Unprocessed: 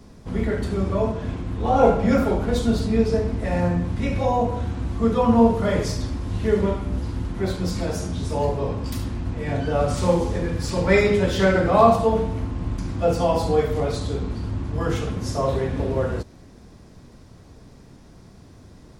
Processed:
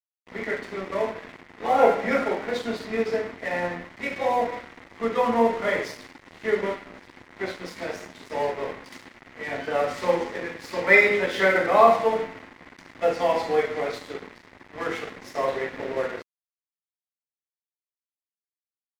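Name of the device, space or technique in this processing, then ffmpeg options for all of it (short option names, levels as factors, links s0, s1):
pocket radio on a weak battery: -af "highpass=380,lowpass=4500,aeval=exprs='sgn(val(0))*max(abs(val(0))-0.0119,0)':c=same,equalizer=f=2000:t=o:w=0.45:g=10.5"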